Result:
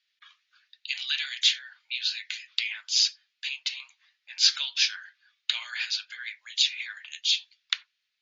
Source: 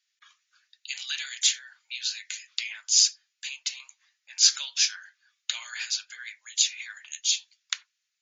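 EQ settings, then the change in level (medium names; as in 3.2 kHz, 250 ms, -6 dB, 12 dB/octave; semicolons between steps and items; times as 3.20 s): low-pass 4 kHz 24 dB/octave; treble shelf 3.1 kHz +10 dB; 0.0 dB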